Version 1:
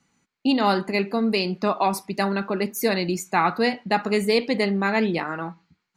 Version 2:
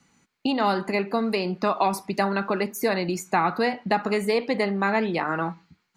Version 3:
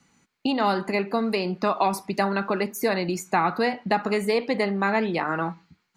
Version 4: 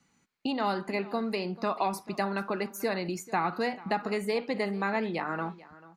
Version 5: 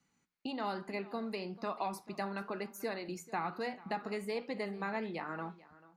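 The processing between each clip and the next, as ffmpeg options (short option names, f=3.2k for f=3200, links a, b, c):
-filter_complex "[0:a]acrossover=split=640|1600[a][b][c];[a]acompressor=threshold=-31dB:ratio=4[d];[b]acompressor=threshold=-28dB:ratio=4[e];[c]acompressor=threshold=-40dB:ratio=4[f];[d][e][f]amix=inputs=3:normalize=0,volume=5dB"
-af anull
-af "aecho=1:1:439:0.106,volume=-6.5dB"
-af "flanger=delay=6.4:depth=2.7:regen=-85:speed=1.1:shape=sinusoidal,volume=-3.5dB"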